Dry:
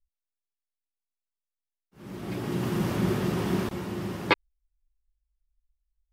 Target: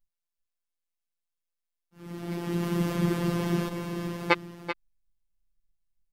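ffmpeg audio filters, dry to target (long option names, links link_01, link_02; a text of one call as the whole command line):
ffmpeg -i in.wav -af "afftfilt=real='hypot(re,im)*cos(PI*b)':imag='0':win_size=1024:overlap=0.75,aecho=1:1:385:0.316,volume=2.5dB" out.wav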